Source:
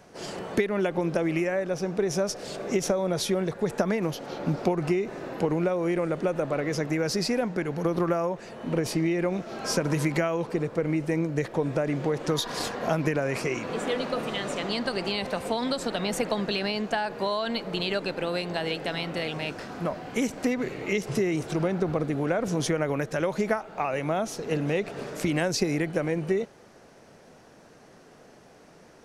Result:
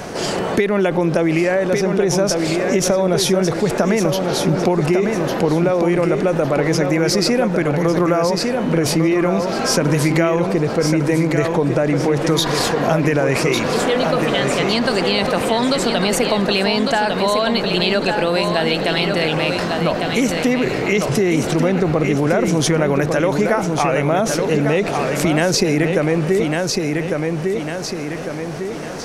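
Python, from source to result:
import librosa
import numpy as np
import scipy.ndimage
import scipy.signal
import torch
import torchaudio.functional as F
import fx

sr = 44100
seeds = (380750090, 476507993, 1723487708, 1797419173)

p1 = x + fx.echo_feedback(x, sr, ms=1152, feedback_pct=29, wet_db=-7.0, dry=0)
p2 = fx.env_flatten(p1, sr, amount_pct=50)
y = p2 * 10.0 ** (6.5 / 20.0)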